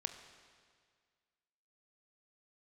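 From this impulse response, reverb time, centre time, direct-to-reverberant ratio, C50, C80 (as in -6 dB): 1.9 s, 24 ms, 7.5 dB, 9.0 dB, 10.0 dB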